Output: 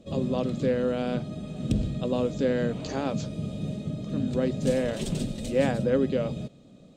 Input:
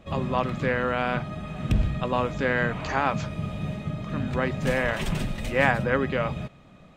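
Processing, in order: graphic EQ 125/250/500/1000/2000/4000/8000 Hz +4/+10/+10/-7/-7/+8/+11 dB; gain -8.5 dB

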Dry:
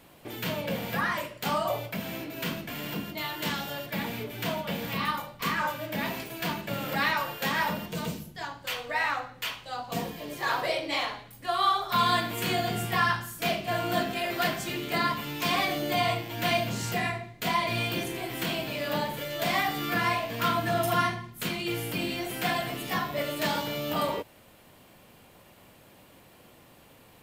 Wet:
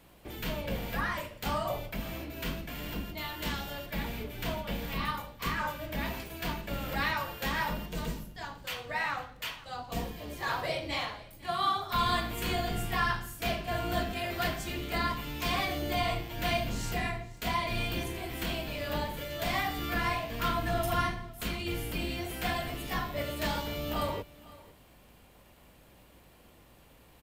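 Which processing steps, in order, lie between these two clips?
octaver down 2 oct, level +2 dB; echo 0.503 s -20.5 dB; crackle 16/s -47 dBFS; gain -4.5 dB

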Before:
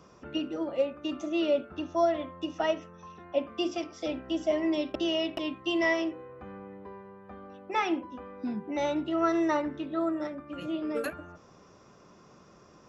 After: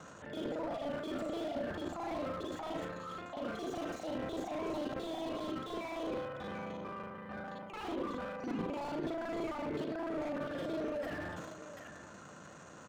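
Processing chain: local time reversal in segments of 37 ms; HPF 81 Hz; bell 390 Hz -9 dB 0.21 oct; notches 60/120/180/240/300/360/420/480 Hz; reverse; compressor 6:1, threshold -36 dBFS, peak gain reduction 13.5 dB; reverse; limiter -33.5 dBFS, peak gain reduction 10.5 dB; transient shaper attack -5 dB, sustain +10 dB; formant shift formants +3 st; on a send: echo 0.739 s -15 dB; on the sum: slew limiter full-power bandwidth 6.9 Hz; gain +4.5 dB

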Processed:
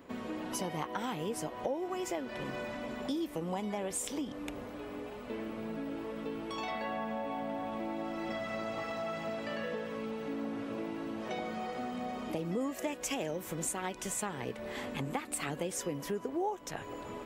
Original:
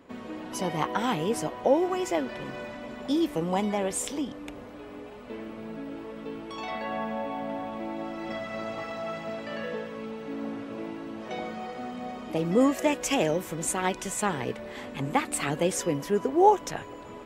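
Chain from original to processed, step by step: high shelf 12000 Hz +8 dB; compressor 4:1, threshold -34 dBFS, peak gain reduction 17 dB

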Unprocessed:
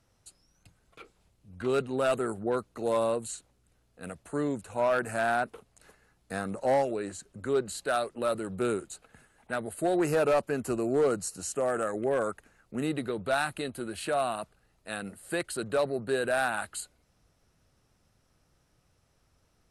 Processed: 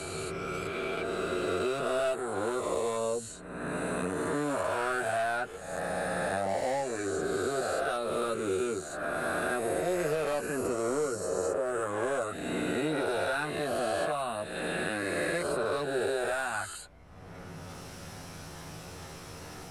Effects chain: spectral swells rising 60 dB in 2.43 s; chorus voices 6, 0.16 Hz, delay 12 ms, depth 1.5 ms; three-band squash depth 100%; gain -3 dB

